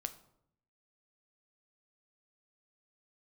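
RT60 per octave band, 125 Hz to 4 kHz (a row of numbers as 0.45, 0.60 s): 0.95, 0.90, 0.75, 0.70, 0.50, 0.45 s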